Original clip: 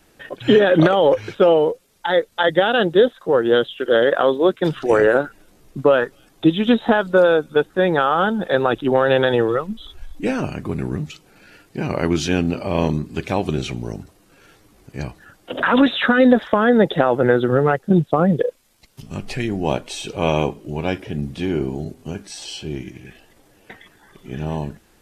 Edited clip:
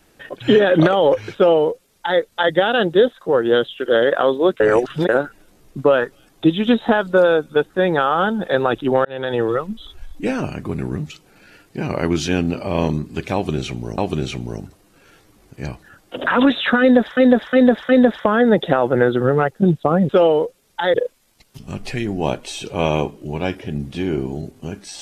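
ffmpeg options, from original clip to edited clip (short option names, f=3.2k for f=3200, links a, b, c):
-filter_complex "[0:a]asplit=10[a][b][c][d][e][f][g][h][i][j];[a]atrim=end=4.602[k];[b]atrim=start=4.598:end=5.092,asetpts=PTS-STARTPTS,areverse[l];[c]atrim=start=5.088:end=9.05,asetpts=PTS-STARTPTS,afade=t=out:st=3.958:d=0.004:c=hsin[m];[d]atrim=start=9.05:end=13.982,asetpts=PTS-STARTPTS,afade=t=in:d=0.44[n];[e]atrim=start=13.338:end=16.532[o];[f]atrim=start=16.168:end=16.532[p];[g]atrim=start=16.168:end=16.532[q];[h]atrim=start=16.168:end=18.372[r];[i]atrim=start=1.348:end=2.202[s];[j]atrim=start=18.368[t];[k][l]acrossfade=d=0.004:c1=hsin:c2=hsin[u];[m][n]concat=n=2:v=0:a=1[v];[u][v]acrossfade=d=0.004:c1=hsin:c2=hsin[w];[w][o]acrossfade=d=0.004:c1=hsin:c2=hsin[x];[x][p]acrossfade=d=0.004:c1=hsin:c2=hsin[y];[y][q]acrossfade=d=0.004:c1=hsin:c2=hsin[z];[z][r]acrossfade=d=0.004:c1=hsin:c2=hsin[aa];[aa][s]acrossfade=d=0.004:c1=hsin:c2=hsin[ab];[ab][t]acrossfade=d=0.004:c1=hsin:c2=hsin"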